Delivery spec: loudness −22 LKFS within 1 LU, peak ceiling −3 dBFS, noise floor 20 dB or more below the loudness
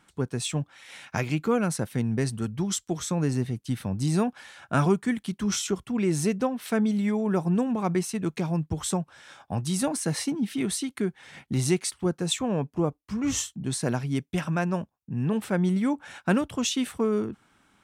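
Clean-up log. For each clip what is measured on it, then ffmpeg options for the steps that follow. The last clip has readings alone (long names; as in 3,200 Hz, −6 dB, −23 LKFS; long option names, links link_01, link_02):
integrated loudness −27.5 LKFS; sample peak −10.5 dBFS; target loudness −22.0 LKFS
→ -af "volume=5.5dB"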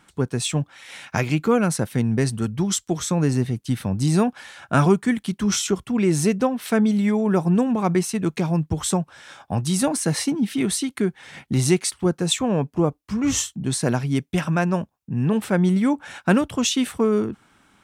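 integrated loudness −22.0 LKFS; sample peak −5.0 dBFS; background noise floor −64 dBFS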